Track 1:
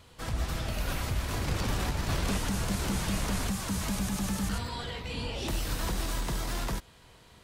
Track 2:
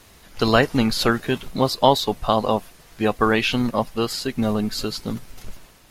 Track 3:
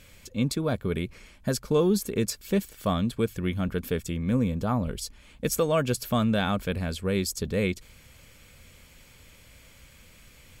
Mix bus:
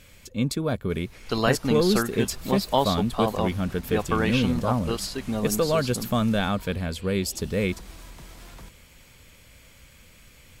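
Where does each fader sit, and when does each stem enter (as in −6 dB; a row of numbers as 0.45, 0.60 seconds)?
−13.0, −6.5, +1.0 decibels; 1.90, 0.90, 0.00 seconds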